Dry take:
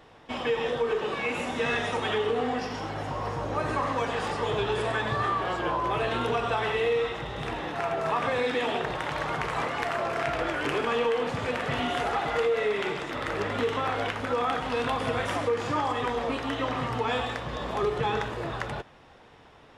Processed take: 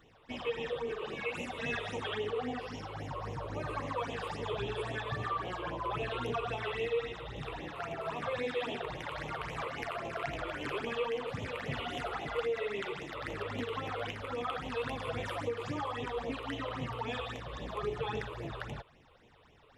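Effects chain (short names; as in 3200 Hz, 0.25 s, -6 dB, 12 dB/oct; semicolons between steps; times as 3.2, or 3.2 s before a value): phaser stages 8, 3.7 Hz, lowest notch 210–1500 Hz; gain -5.5 dB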